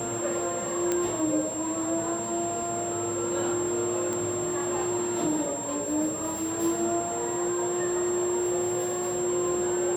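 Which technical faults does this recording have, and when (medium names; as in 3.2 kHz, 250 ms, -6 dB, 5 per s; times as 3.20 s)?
crackle 13 per s -35 dBFS
whine 7.5 kHz -33 dBFS
0.92 s: pop -13 dBFS
4.13 s: pop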